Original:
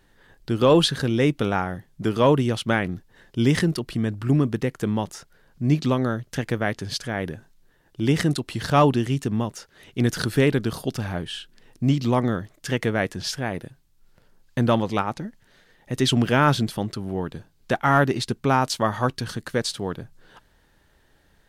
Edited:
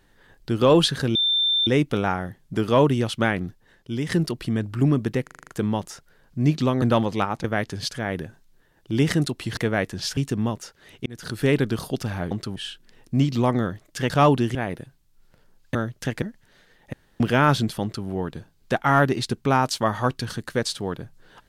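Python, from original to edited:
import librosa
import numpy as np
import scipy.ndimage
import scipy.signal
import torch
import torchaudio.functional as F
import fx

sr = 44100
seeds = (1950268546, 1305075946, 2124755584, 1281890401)

y = fx.edit(x, sr, fx.insert_tone(at_s=1.15, length_s=0.52, hz=3570.0, db=-18.0),
    fx.fade_out_to(start_s=2.95, length_s=0.64, curve='qua', floor_db=-8.5),
    fx.stutter(start_s=4.71, slice_s=0.04, count=7),
    fx.swap(start_s=6.06, length_s=0.47, other_s=14.59, other_length_s=0.62),
    fx.swap(start_s=8.66, length_s=0.45, other_s=12.79, other_length_s=0.6),
    fx.fade_in_span(start_s=10.0, length_s=0.5),
    fx.room_tone_fill(start_s=15.92, length_s=0.27),
    fx.duplicate(start_s=16.81, length_s=0.25, to_s=11.25), tone=tone)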